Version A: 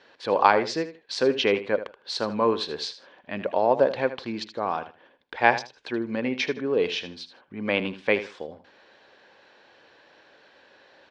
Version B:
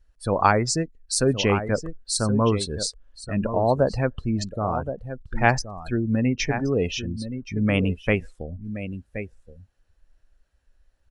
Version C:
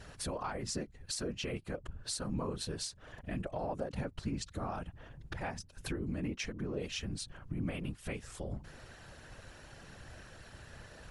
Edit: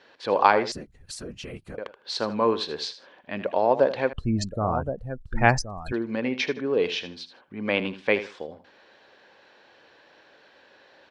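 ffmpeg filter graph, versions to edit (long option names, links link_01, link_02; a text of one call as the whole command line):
ffmpeg -i take0.wav -i take1.wav -i take2.wav -filter_complex "[0:a]asplit=3[link_01][link_02][link_03];[link_01]atrim=end=0.722[link_04];[2:a]atrim=start=0.718:end=1.782[link_05];[link_02]atrim=start=1.778:end=4.132[link_06];[1:a]atrim=start=4.128:end=5.922[link_07];[link_03]atrim=start=5.918[link_08];[link_04][link_05]acrossfade=duration=0.004:curve1=hsin:curve2=hsin[link_09];[link_09][link_06]acrossfade=duration=0.004:curve1=hsin:curve2=hsin[link_10];[link_10][link_07]acrossfade=duration=0.004:curve1=hsin:curve2=hsin[link_11];[link_11][link_08]acrossfade=duration=0.004:curve1=hsin:curve2=hsin" out.wav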